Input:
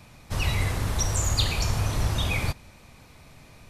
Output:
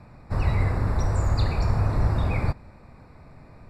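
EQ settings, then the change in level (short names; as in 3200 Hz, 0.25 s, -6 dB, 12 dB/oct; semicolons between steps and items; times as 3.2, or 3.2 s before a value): running mean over 14 samples; +3.5 dB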